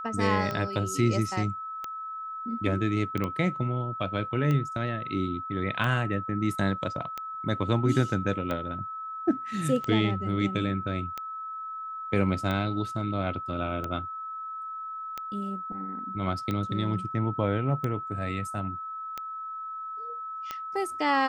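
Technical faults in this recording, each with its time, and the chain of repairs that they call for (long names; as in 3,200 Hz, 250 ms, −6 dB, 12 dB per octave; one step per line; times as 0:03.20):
scratch tick 45 rpm −18 dBFS
whistle 1,300 Hz −34 dBFS
0:03.24: click −18 dBFS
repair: click removal
notch filter 1,300 Hz, Q 30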